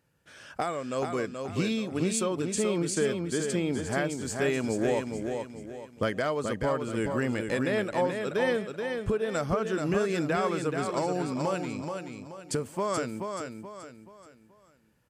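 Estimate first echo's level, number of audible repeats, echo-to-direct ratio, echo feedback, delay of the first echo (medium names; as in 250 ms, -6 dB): -5.5 dB, 4, -5.0 dB, 37%, 429 ms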